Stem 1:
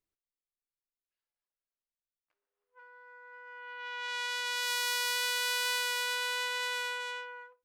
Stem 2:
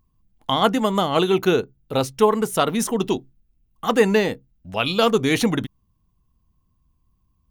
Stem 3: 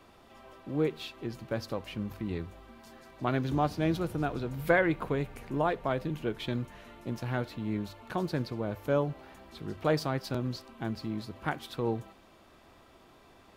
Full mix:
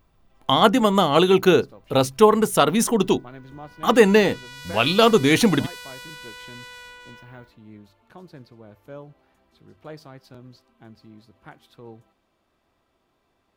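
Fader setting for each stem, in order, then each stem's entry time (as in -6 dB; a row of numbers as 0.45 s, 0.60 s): -7.5 dB, +2.5 dB, -12.0 dB; 0.00 s, 0.00 s, 0.00 s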